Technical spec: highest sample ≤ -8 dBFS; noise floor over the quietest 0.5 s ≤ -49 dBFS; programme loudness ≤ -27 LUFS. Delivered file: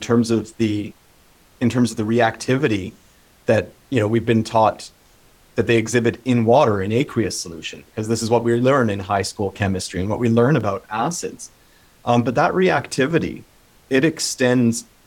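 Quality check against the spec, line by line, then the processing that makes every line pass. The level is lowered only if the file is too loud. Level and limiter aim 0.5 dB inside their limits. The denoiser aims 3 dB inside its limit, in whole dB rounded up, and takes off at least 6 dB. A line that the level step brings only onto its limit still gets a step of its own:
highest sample -4.0 dBFS: fail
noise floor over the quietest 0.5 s -53 dBFS: pass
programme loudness -19.5 LUFS: fail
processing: trim -8 dB

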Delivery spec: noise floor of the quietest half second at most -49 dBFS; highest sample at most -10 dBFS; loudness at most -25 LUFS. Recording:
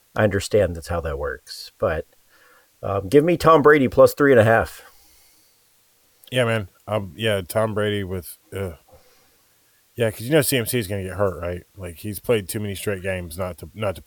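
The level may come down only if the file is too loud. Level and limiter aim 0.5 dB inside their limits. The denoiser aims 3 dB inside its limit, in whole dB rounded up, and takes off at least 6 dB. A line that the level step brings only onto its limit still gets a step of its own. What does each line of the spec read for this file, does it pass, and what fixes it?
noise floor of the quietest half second -60 dBFS: pass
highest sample -3.0 dBFS: fail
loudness -21.0 LUFS: fail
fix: trim -4.5 dB; peak limiter -10.5 dBFS

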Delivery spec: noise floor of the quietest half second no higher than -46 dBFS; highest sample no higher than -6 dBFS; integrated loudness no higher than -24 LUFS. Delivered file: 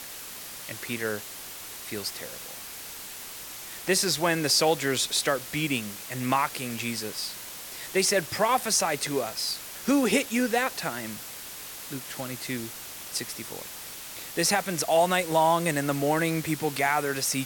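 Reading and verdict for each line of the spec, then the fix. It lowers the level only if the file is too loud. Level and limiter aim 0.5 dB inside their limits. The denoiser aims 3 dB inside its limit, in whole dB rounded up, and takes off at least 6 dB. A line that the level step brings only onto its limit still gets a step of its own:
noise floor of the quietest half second -41 dBFS: fail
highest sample -9.5 dBFS: pass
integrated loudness -27.5 LUFS: pass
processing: noise reduction 8 dB, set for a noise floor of -41 dBFS

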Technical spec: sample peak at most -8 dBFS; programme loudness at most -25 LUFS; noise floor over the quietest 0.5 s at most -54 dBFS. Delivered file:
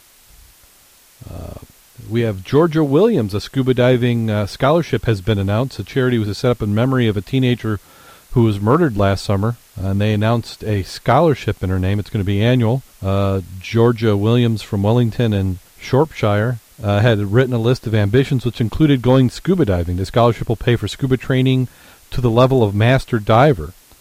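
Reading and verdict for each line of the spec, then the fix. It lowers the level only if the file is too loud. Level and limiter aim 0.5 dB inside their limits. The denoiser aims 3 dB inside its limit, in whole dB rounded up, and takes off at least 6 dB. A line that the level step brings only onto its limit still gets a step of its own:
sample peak -2.5 dBFS: fail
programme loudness -17.0 LUFS: fail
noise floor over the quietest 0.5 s -49 dBFS: fail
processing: trim -8.5 dB

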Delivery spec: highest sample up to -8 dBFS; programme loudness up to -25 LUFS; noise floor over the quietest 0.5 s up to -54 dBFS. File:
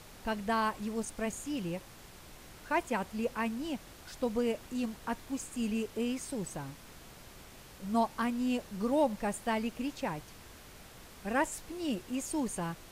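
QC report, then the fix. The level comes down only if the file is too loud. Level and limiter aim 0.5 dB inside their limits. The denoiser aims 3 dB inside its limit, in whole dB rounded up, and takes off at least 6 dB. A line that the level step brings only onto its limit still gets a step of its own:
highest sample -17.5 dBFS: pass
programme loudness -34.5 LUFS: pass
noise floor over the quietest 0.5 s -52 dBFS: fail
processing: noise reduction 6 dB, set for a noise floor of -52 dBFS

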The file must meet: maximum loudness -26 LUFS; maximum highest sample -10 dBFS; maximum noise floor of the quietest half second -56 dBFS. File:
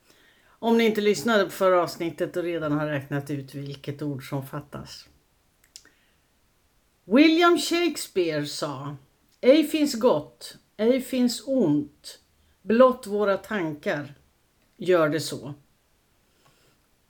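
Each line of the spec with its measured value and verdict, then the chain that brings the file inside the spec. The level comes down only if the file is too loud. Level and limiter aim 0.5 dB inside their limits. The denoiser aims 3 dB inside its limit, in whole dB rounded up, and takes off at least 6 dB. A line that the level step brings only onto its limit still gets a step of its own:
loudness -24.0 LUFS: fail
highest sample -5.0 dBFS: fail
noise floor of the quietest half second -65 dBFS: pass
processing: trim -2.5 dB; peak limiter -10.5 dBFS

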